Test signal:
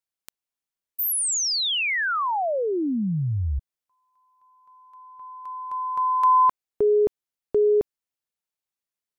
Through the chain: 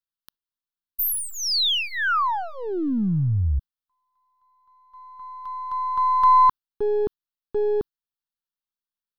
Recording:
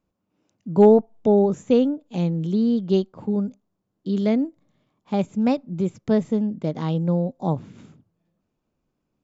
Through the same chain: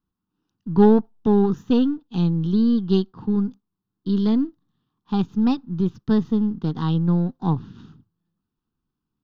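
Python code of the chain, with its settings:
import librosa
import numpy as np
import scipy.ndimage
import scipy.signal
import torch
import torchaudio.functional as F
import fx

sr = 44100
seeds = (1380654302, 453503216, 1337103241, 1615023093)

y = np.where(x < 0.0, 10.0 ** (-3.0 / 20.0) * x, x)
y = fx.fixed_phaser(y, sr, hz=2200.0, stages=6)
y = fx.gate_hold(y, sr, open_db=-49.0, close_db=-55.0, hold_ms=19.0, range_db=-7, attack_ms=6.8, release_ms=40.0)
y = F.gain(torch.from_numpy(y), 5.0).numpy()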